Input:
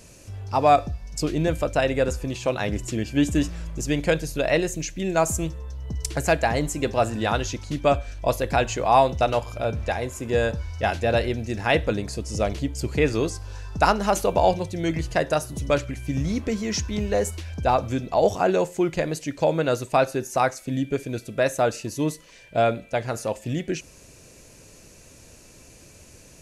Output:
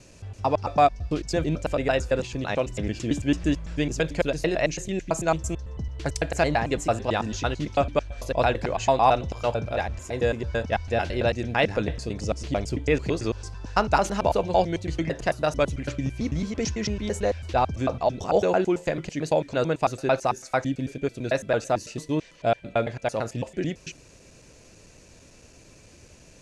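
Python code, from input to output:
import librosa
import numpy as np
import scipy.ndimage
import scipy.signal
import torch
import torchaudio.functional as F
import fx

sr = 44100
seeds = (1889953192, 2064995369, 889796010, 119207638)

y = fx.block_reorder(x, sr, ms=111.0, group=2)
y = scipy.signal.sosfilt(scipy.signal.butter(2, 6800.0, 'lowpass', fs=sr, output='sos'), y)
y = y * librosa.db_to_amplitude(-1.5)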